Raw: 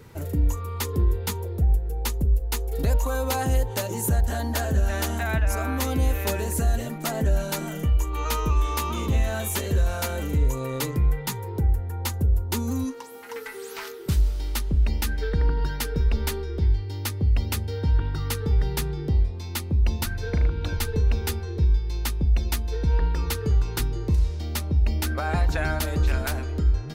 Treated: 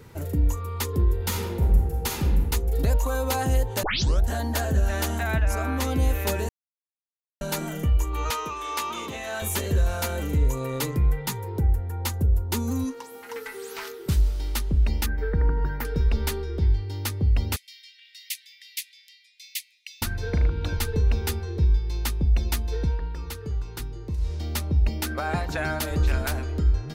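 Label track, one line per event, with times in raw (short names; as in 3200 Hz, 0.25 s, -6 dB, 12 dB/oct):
1.150000	2.470000	reverb throw, RT60 1.3 s, DRR -1.5 dB
3.830000	3.830000	tape start 0.42 s
5.440000	5.970000	high shelf 11000 Hz -7 dB
6.490000	7.410000	mute
8.300000	9.420000	weighting filter A
15.060000	15.850000	band shelf 5600 Hz -15 dB 2.3 oct
17.560000	20.020000	steep high-pass 2000 Hz 72 dB/oct
22.830000	24.320000	dip -8 dB, fades 0.14 s
24.890000	25.910000	HPF 100 Hz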